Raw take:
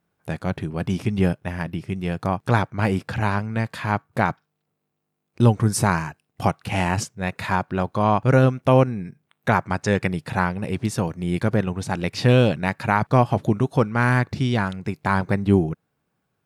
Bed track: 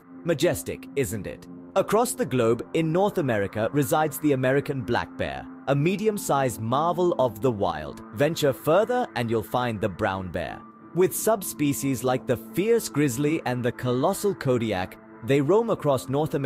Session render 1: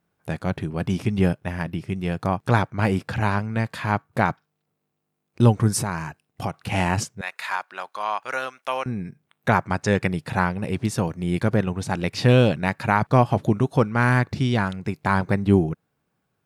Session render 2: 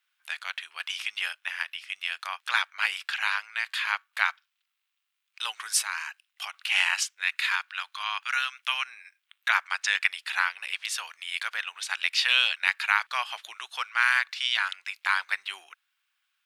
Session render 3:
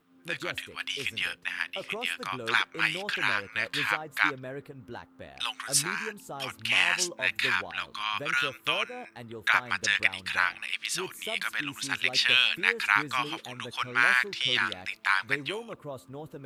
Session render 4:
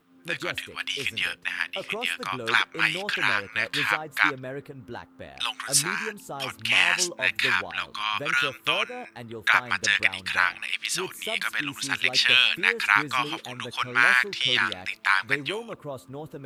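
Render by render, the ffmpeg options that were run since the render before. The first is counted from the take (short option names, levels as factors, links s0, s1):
-filter_complex "[0:a]asettb=1/sr,asplit=3[s0][s1][s2];[s0]atrim=end=5.824[s3];[s1]atrim=start=5.82:end=6.54,asetpts=PTS-STARTPTS,afade=t=in:d=0.004:c=qsin,afade=t=out:st=0.716:d=0.004:c=qsin,acompressor=threshold=0.0447:ratio=2:attack=3.2:release=140:knee=1:detection=peak[s4];[s2]atrim=start=6.536[s5];[s3][s4]acrossfade=d=0.004:c1=hsin:c2=qsin[s6];[s6][s5]acrossfade=d=0.004:c1=qsin:c2=hsin,asettb=1/sr,asplit=3[s7][s8][s9];[s7]atrim=end=7.214[s10];[s8]atrim=start=7.21:end=8.86,asetpts=PTS-STARTPTS,afade=t=in:d=0.004:c=qsin,afade=t=out:st=1.646:d=0.004:c=qsin,highpass=1100[s11];[s9]atrim=start=8.856[s12];[s10][s11]acrossfade=d=0.004:c1=hsin:c2=qsin[s13];[s13][s12]acrossfade=d=0.004:c1=qsin:c2=hsin"
-af "highpass=f=1300:w=0.5412,highpass=f=1300:w=1.3066,equalizer=f=3100:t=o:w=1.1:g=10"
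-filter_complex "[1:a]volume=0.141[s0];[0:a][s0]amix=inputs=2:normalize=0"
-af "volume=1.5,alimiter=limit=0.708:level=0:latency=1"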